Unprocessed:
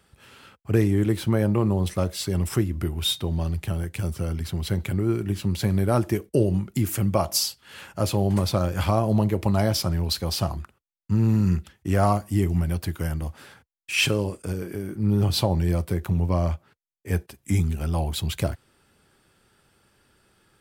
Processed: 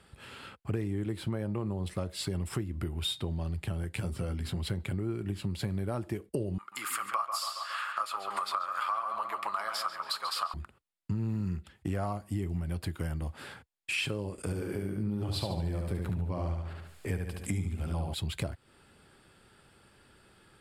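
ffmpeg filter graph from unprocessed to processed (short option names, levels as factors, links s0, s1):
-filter_complex "[0:a]asettb=1/sr,asplit=3[s0][s1][s2];[s0]atrim=end=3.934[s3];[s1]atrim=start=3.93:end=4.62,asetpts=PTS-STARTPTS,afade=t=in:d=0.004:c=qsin,afade=t=out:st=0.686:d=0.004:c=qsin,bandreject=f=50:t=h:w=6,bandreject=f=100:t=h:w=6,bandreject=f=150:t=h:w=6,bandreject=f=200:t=h:w=6,bandreject=f=250:t=h:w=6,bandreject=f=300:t=h:w=6,bandreject=f=350:t=h:w=6,bandreject=f=400:t=h:w=6,asplit=2[s4][s5];[s5]adelay=16,volume=0.376[s6];[s4][s6]amix=inputs=2:normalize=0,atrim=end_sample=30429[s7];[s2]atrim=start=4.616[s8];[s3][s7]acrossfade=d=0.004:c1=hsin:c2=qsin[s9];[s9][s8]acrossfade=d=0.004:c1=qsin:c2=hsin,asettb=1/sr,asplit=3[s10][s11][s12];[s10]atrim=end=6.584[s13];[s11]atrim=start=6.58:end=10.54,asetpts=PTS-STARTPTS,afade=t=in:d=0.004:c=qsin,afade=t=out:st=3.956:d=0.004:c=qsin,highpass=f=1200:t=q:w=8.6,bandreject=f=6000:w=20,asplit=2[s14][s15];[s15]adelay=138,lowpass=f=3200:p=1,volume=0.473,asplit=2[s16][s17];[s17]adelay=138,lowpass=f=3200:p=1,volume=0.49,asplit=2[s18][s19];[s19]adelay=138,lowpass=f=3200:p=1,volume=0.49,asplit=2[s20][s21];[s21]adelay=138,lowpass=f=3200:p=1,volume=0.49,asplit=2[s22][s23];[s23]adelay=138,lowpass=f=3200:p=1,volume=0.49,asplit=2[s24][s25];[s25]adelay=138,lowpass=f=3200:p=1,volume=0.49[s26];[s14][s16][s18][s20][s22][s24][s26]amix=inputs=7:normalize=0,atrim=end_sample=174636[s27];[s12]atrim=start=10.536[s28];[s13][s27]acrossfade=d=0.004:c1=hsin:c2=qsin[s29];[s29][s28]acrossfade=d=0.004:c1=qsin:c2=hsin,asettb=1/sr,asplit=3[s30][s31][s32];[s30]atrim=end=14.384[s33];[s31]atrim=start=14.38:end=18.14,asetpts=PTS-STARTPTS,afade=t=in:d=0.004:c=qsin,afade=t=out:st=3.756:d=0.004:c=qsin,acompressor=mode=upward:threshold=0.0224:ratio=2.5:attack=3.2:release=140:knee=2.83:detection=peak,aecho=1:1:72|144|216|288|360|432:0.631|0.29|0.134|0.0614|0.0283|0.013,atrim=end_sample=165816[s34];[s32]atrim=start=18.136[s35];[s33][s34]acrossfade=d=0.004:c1=hsin:c2=qsin[s36];[s36][s35]acrossfade=d=0.004:c1=qsin:c2=hsin,lowpass=10000,equalizer=f=6000:t=o:w=0.25:g=-10.5,acompressor=threshold=0.02:ratio=5,volume=1.33"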